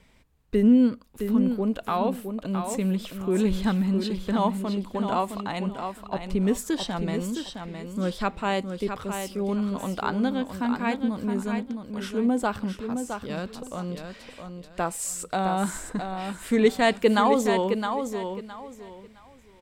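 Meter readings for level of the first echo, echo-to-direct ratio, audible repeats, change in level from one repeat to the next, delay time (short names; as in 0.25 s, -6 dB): -7.0 dB, -6.5 dB, 3, -12.5 dB, 0.664 s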